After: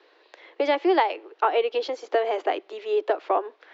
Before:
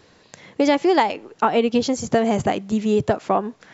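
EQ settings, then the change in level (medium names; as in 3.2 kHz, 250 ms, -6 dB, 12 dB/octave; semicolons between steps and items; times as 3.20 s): steep high-pass 320 Hz 72 dB/octave; low-pass 4 kHz 24 dB/octave; -3.0 dB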